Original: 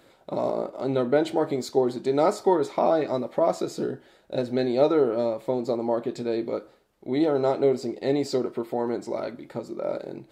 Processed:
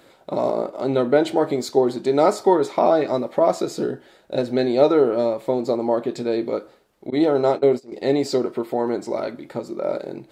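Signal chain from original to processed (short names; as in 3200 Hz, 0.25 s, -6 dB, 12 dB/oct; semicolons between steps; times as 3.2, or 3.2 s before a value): 7.1–7.92 gate -25 dBFS, range -21 dB; low shelf 120 Hz -5 dB; gain +5 dB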